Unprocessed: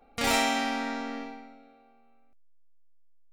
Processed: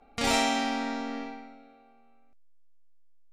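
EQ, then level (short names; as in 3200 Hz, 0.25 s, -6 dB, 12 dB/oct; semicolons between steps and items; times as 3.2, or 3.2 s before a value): notch 510 Hz, Q 12; dynamic EQ 1700 Hz, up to -4 dB, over -42 dBFS, Q 0.9; LPF 8900 Hz 12 dB/oct; +1.5 dB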